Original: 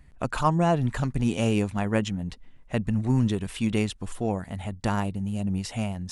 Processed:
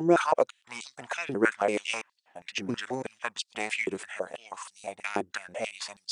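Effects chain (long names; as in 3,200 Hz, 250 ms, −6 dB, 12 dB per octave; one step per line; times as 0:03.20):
slices reordered back to front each 168 ms, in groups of 4
formants moved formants −2 semitones
high-pass on a step sequencer 6.2 Hz 360–4,300 Hz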